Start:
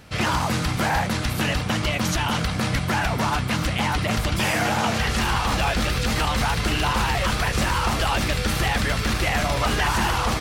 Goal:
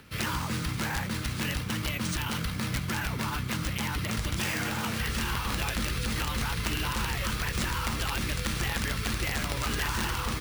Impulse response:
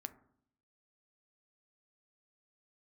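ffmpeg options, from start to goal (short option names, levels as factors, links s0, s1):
-filter_complex "[0:a]equalizer=f=700:t=o:w=0.64:g=-12,acrossover=split=170|4300[s0][s1][s2];[s1]acompressor=mode=upward:threshold=0.00631:ratio=2.5[s3];[s0][s3][s2]amix=inputs=3:normalize=0,acrusher=samples=3:mix=1:aa=0.000001,aeval=exprs='(mod(4.73*val(0)+1,2)-1)/4.73':c=same,volume=0.447"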